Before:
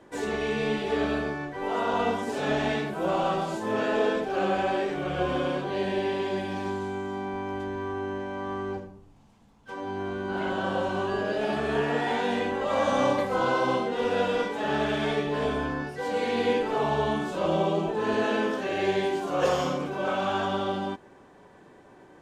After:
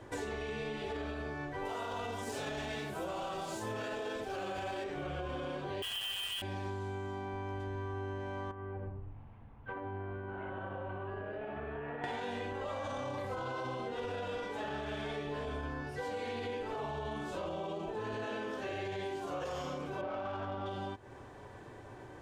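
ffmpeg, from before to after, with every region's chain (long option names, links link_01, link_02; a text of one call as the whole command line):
ffmpeg -i in.wav -filter_complex "[0:a]asettb=1/sr,asplit=3[link_01][link_02][link_03];[link_01]atrim=end=1.654[link_04];[link_02]atrim=start=1.65:end=4.84,asetpts=PTS-STARTPTS,afade=type=in:duration=0.004:curve=qsin,afade=type=out:start_time=3.186:duration=0.004:curve=qsin,highshelf=frequency=4100:gain=10.5,aeval=exprs='sgn(val(0))*max(abs(val(0))-0.00224,0)':channel_layout=same[link_05];[link_03]atrim=start=4.836[link_06];[link_04][link_05]acrossfade=duration=0.004:curve1=hsin:curve2=qsin[link_07];[link_07][link_06]acrossfade=duration=0.004:curve1=qsin:curve2=hsin,asettb=1/sr,asplit=3[link_08][link_09][link_10];[link_08]atrim=end=5.824[link_11];[link_09]atrim=start=5.82:end=6.42,asetpts=PTS-STARTPTS,afade=type=in:duration=0.004:curve=qsin,afade=type=out:start_time=0.596:duration=0.004:curve=qsin,lowpass=frequency=3000:width_type=q:width=0.5098,lowpass=frequency=3000:width_type=q:width=0.6013,lowpass=frequency=3000:width_type=q:width=0.9,lowpass=frequency=3000:width_type=q:width=2.563,afreqshift=-3500,acrusher=bits=4:mix=0:aa=0.5[link_12];[link_10]atrim=start=6.416[link_13];[link_11][link_12]acrossfade=duration=0.004:curve1=hsin:curve2=qsin[link_14];[link_14][link_13]acrossfade=duration=0.004:curve1=qsin:curve2=hsin,asettb=1/sr,asplit=3[link_15][link_16][link_17];[link_15]atrim=end=8.514[link_18];[link_16]atrim=start=8.51:end=12.04,asetpts=PTS-STARTPTS,afade=type=in:duration=0.004:curve=qsin,afade=type=out:start_time=3.526:duration=0.004:curve=qsin,lowpass=frequency=2400:width=0.5412,lowpass=frequency=2400:width=1.3066,acompressor=threshold=-37dB:ratio=12:attack=3.2:release=140:knee=1:detection=peak[link_19];[link_17]atrim=start=12.036[link_20];[link_18][link_19]acrossfade=duration=0.004:curve1=hsin:curve2=qsin[link_21];[link_21][link_20]acrossfade=duration=0.004:curve1=qsin:curve2=hsin,asettb=1/sr,asplit=3[link_22][link_23][link_24];[link_22]atrim=end=20.014[link_25];[link_23]atrim=start=20.01:end=20.66,asetpts=PTS-STARTPTS,afade=type=in:duration=0.004:curve=qsin,afade=type=out:start_time=0.646:duration=0.004:curve=qsin,asplit=2[link_26][link_27];[link_27]adelay=24,volume=-4dB[link_28];[link_26][link_28]amix=inputs=2:normalize=0,atrim=end_sample=28665,adynamicsmooth=sensitivity=1:basefreq=1500[link_29];[link_24]atrim=start=20.656[link_30];[link_25][link_29]acrossfade=duration=0.004:curve1=hsin:curve2=qsin[link_31];[link_31][link_30]acrossfade=duration=0.004:curve1=qsin:curve2=hsin,lowshelf=frequency=140:width_type=q:width=3:gain=6,alimiter=limit=-20dB:level=0:latency=1:release=22,acompressor=threshold=-39dB:ratio=6,volume=2dB" out.wav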